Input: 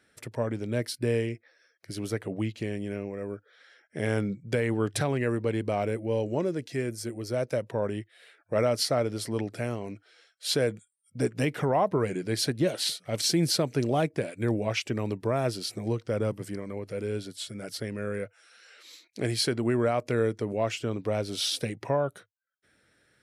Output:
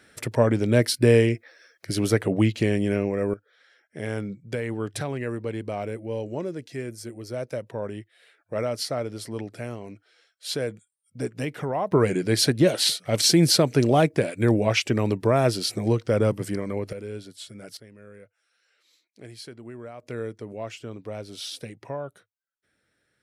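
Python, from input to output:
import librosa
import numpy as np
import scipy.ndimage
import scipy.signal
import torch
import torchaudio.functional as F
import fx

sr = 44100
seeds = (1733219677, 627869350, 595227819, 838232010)

y = fx.gain(x, sr, db=fx.steps((0.0, 10.0), (3.34, -2.5), (11.92, 7.0), (16.93, -3.5), (17.77, -14.5), (20.03, -6.5)))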